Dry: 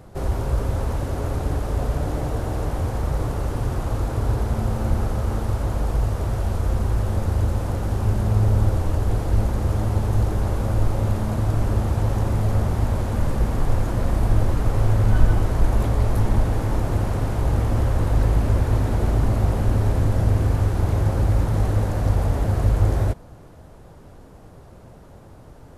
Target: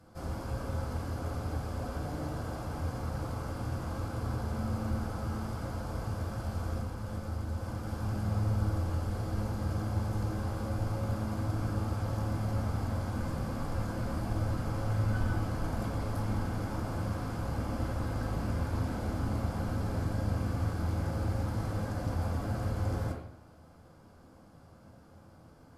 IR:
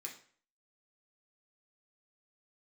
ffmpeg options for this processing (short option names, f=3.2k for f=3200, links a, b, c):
-filter_complex "[0:a]asettb=1/sr,asplit=3[a][b][c];[a]atrim=end=6.784[d];[b]atrim=start=6.78:end=7.87,asetpts=PTS-STARTPTS,afade=t=in:d=0.004:c=qsin,afade=t=out:st=1.086:d=0.004:c=qsin,acompressor=threshold=-20dB:ratio=6[e];[c]atrim=start=7.866[f];[d][e]acrossfade=d=0.004:c1=hsin:c2=qsin[g];[g][f]acrossfade=d=0.004:c1=qsin:c2=hsin[h];[1:a]atrim=start_sample=2205,asetrate=28224,aresample=44100[i];[h][i]afir=irnorm=-1:irlink=0,volume=-8.5dB"